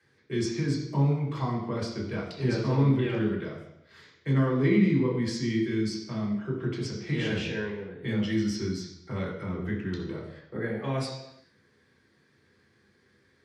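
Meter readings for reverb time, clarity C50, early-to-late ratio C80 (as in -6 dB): 0.80 s, 5.0 dB, 8.0 dB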